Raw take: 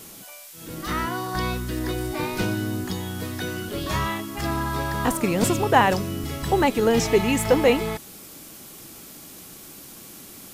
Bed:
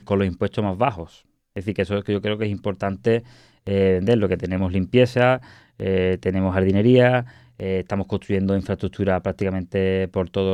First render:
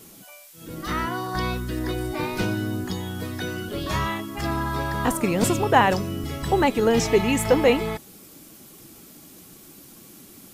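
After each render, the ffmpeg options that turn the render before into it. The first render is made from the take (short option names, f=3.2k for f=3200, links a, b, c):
-af "afftdn=nr=6:nf=-43"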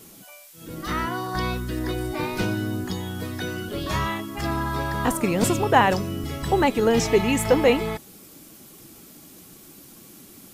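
-af anull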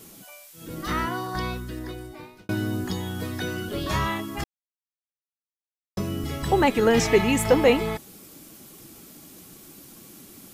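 -filter_complex "[0:a]asettb=1/sr,asplit=3[a][b][c];[a]atrim=end=6.674[d];[b]atrim=start=6.67:end=7.24,asetpts=PTS-STARTPTS,afade=t=in:d=0.004:c=qsin,afade=t=out:st=0.566:d=0.004:c=qsin,equalizer=f=1.8k:w=1.5:g=5[e];[c]atrim=start=7.236[f];[d][e]acrossfade=d=0.004:c1=hsin:c2=qsin[g];[g][f]acrossfade=d=0.004:c1=qsin:c2=hsin,asplit=4[h][i][j][k];[h]atrim=end=2.49,asetpts=PTS-STARTPTS,afade=t=out:st=0.99:d=1.5[l];[i]atrim=start=2.49:end=4.44,asetpts=PTS-STARTPTS,afade=t=in:d=0.004:c=hsin,afade=t=out:st=1.946:d=0.004:c=hsin[m];[j]atrim=start=4.44:end=5.97,asetpts=PTS-STARTPTS,volume=0[n];[k]atrim=start=5.97,asetpts=PTS-STARTPTS,afade=t=in:d=0.004:c=hsin[o];[l][m][n][o]concat=n=4:v=0:a=1"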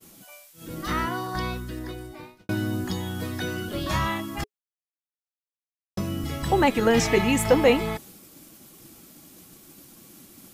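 -af "agate=range=-33dB:threshold=-43dB:ratio=3:detection=peak,bandreject=f=420:w=12"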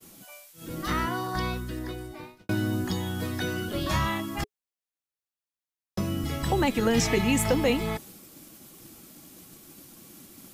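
-filter_complex "[0:a]acrossover=split=270|3000[a][b][c];[b]acompressor=threshold=-27dB:ratio=2.5[d];[a][d][c]amix=inputs=3:normalize=0"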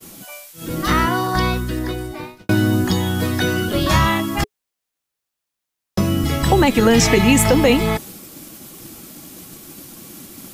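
-af "volume=11dB,alimiter=limit=-3dB:level=0:latency=1"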